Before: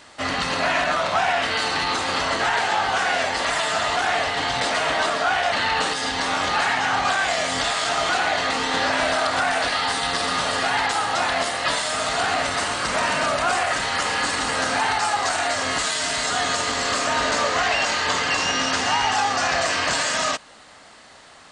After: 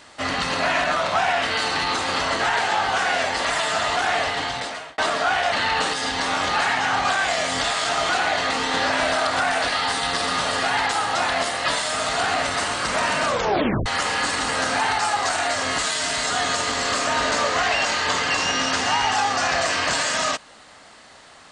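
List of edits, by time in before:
0:04.29–0:04.98: fade out
0:13.27: tape stop 0.59 s

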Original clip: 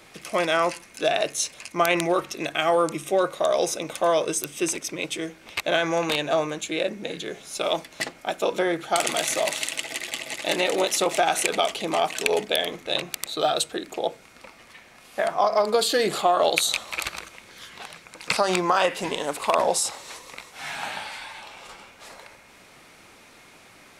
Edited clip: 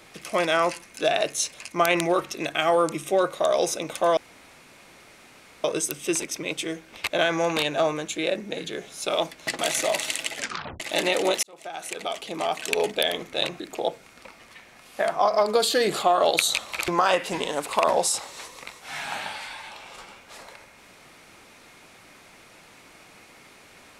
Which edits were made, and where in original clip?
0:04.17: splice in room tone 1.47 s
0:08.12–0:09.12: remove
0:09.88: tape stop 0.45 s
0:10.96–0:12.52: fade in
0:13.13–0:13.79: remove
0:17.07–0:18.59: remove

